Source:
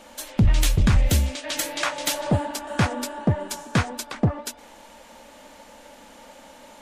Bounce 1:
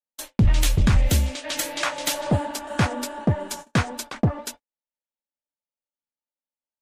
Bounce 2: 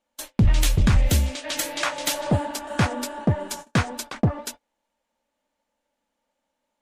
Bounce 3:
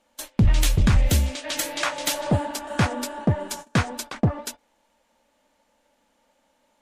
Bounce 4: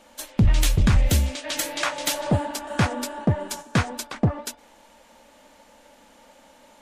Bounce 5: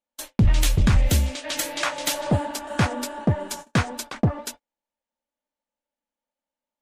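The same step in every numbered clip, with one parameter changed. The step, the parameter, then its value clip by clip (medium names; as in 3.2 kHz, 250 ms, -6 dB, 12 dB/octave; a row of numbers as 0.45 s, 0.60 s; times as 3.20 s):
gate, range: -58 dB, -32 dB, -20 dB, -6 dB, -45 dB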